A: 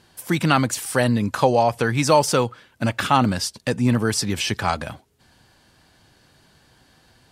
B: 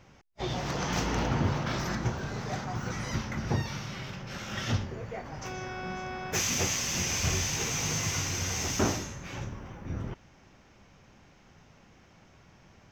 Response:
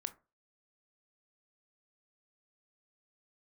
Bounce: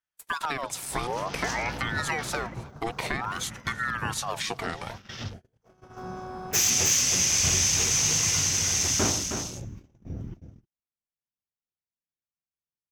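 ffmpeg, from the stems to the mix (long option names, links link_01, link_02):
-filter_complex "[0:a]acompressor=threshold=-21dB:ratio=12,aeval=exprs='val(0)*sin(2*PI*1100*n/s+1100*0.5/0.54*sin(2*PI*0.54*n/s))':channel_layout=same,volume=-3dB,asplit=4[link_01][link_02][link_03][link_04];[link_02]volume=-21.5dB[link_05];[link_03]volume=-23.5dB[link_06];[1:a]crystalizer=i=3:c=0,afwtdn=0.0178,adelay=200,volume=-1.5dB,asplit=3[link_07][link_08][link_09];[link_08]volume=-18dB[link_10];[link_09]volume=-6dB[link_11];[link_04]apad=whole_len=578569[link_12];[link_07][link_12]sidechaincompress=threshold=-56dB:ratio=10:attack=34:release=685[link_13];[2:a]atrim=start_sample=2205[link_14];[link_05][link_10]amix=inputs=2:normalize=0[link_15];[link_15][link_14]afir=irnorm=-1:irlink=0[link_16];[link_06][link_11]amix=inputs=2:normalize=0,aecho=0:1:315:1[link_17];[link_01][link_13][link_16][link_17]amix=inputs=4:normalize=0,agate=range=-34dB:threshold=-40dB:ratio=16:detection=peak"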